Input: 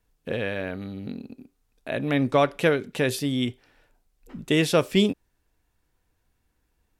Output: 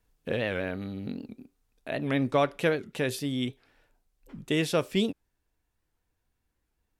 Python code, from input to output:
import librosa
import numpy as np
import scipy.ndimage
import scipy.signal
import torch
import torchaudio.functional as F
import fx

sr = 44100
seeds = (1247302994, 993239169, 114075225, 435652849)

y = fx.rider(x, sr, range_db=4, speed_s=2.0)
y = fx.record_warp(y, sr, rpm=78.0, depth_cents=160.0)
y = y * 10.0 ** (-5.0 / 20.0)